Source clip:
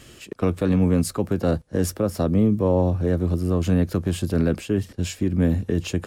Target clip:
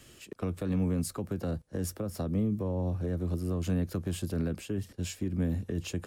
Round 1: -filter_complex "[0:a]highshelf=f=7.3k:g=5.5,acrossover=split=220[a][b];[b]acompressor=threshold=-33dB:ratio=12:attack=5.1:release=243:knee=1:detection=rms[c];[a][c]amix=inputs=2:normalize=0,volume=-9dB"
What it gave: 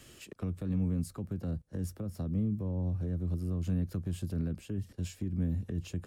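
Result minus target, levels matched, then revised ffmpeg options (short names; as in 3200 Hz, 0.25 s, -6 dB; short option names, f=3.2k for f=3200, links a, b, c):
compressor: peak gain reduction +10 dB
-filter_complex "[0:a]highshelf=f=7.3k:g=5.5,acrossover=split=220[a][b];[b]acompressor=threshold=-22dB:ratio=12:attack=5.1:release=243:knee=1:detection=rms[c];[a][c]amix=inputs=2:normalize=0,volume=-9dB"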